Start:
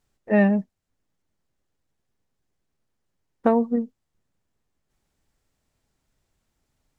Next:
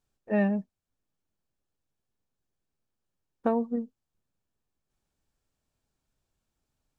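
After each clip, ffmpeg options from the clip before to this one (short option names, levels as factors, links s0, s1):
-af "bandreject=f=2000:w=8.2,volume=0.447"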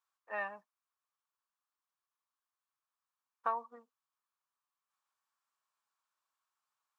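-af "highpass=f=1100:t=q:w=4.9,volume=0.473"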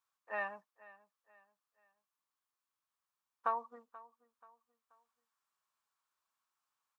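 -af "aecho=1:1:482|964|1446:0.1|0.038|0.0144"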